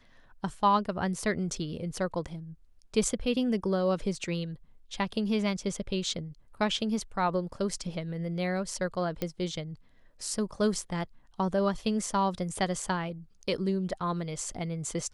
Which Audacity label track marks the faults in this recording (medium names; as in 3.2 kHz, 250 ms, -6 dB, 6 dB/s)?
9.220000	9.220000	pop -17 dBFS